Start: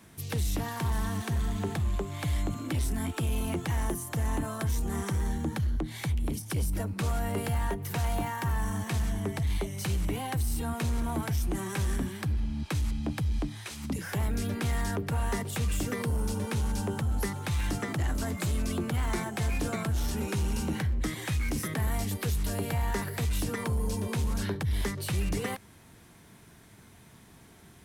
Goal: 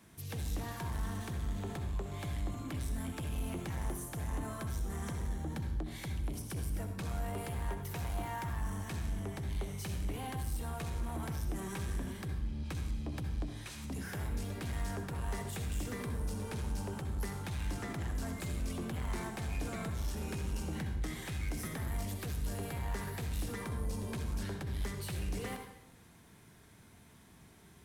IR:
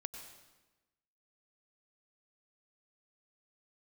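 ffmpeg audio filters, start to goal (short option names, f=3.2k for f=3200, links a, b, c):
-filter_complex "[0:a]asoftclip=type=tanh:threshold=-29dB[a];[1:a]atrim=start_sample=2205,asetrate=66150,aresample=44100[b];[a][b]afir=irnorm=-1:irlink=0,volume=1dB"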